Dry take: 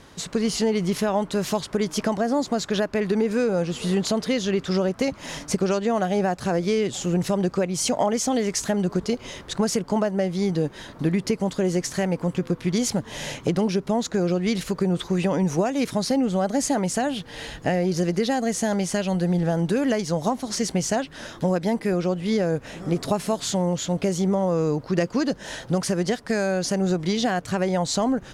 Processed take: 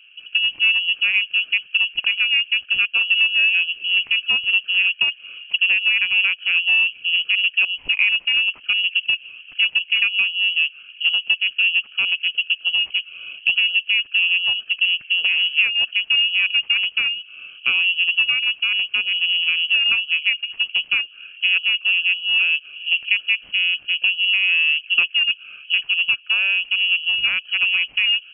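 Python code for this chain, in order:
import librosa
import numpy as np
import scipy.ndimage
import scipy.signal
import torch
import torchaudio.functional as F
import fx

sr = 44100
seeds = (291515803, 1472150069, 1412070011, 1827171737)

y = fx.wiener(x, sr, points=41)
y = scipy.signal.sosfilt(scipy.signal.butter(2, 93.0, 'highpass', fs=sr, output='sos'), y)
y = fx.peak_eq(y, sr, hz=440.0, db=11.0, octaves=2.1)
y = fx.freq_invert(y, sr, carrier_hz=3100)
y = F.gain(torch.from_numpy(y), -3.0).numpy()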